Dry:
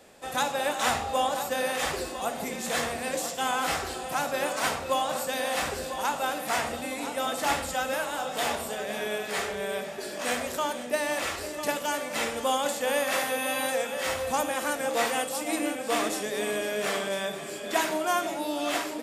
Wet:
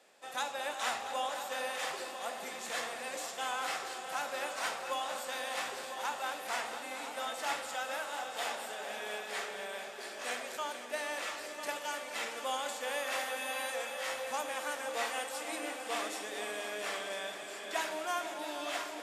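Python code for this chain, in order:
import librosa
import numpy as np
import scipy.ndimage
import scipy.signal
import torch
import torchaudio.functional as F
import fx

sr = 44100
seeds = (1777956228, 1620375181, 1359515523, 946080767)

y = fx.weighting(x, sr, curve='A')
y = fx.echo_heads(y, sr, ms=227, heads='all three', feedback_pct=66, wet_db=-15.5)
y = y * 10.0 ** (-8.5 / 20.0)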